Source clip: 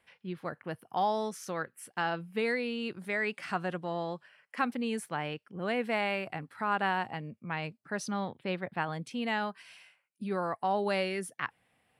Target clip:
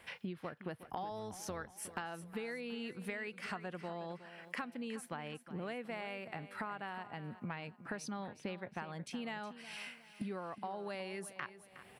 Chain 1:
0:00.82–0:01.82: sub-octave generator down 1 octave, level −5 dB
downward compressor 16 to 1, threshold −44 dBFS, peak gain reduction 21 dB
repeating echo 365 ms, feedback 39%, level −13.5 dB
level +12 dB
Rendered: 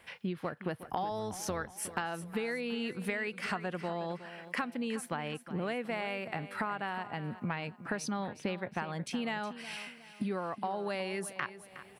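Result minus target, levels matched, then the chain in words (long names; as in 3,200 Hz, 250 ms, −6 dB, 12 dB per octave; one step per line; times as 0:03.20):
downward compressor: peak gain reduction −7 dB
0:00.82–0:01.82: sub-octave generator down 1 octave, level −5 dB
downward compressor 16 to 1, threshold −51.5 dBFS, peak gain reduction 28 dB
repeating echo 365 ms, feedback 39%, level −13.5 dB
level +12 dB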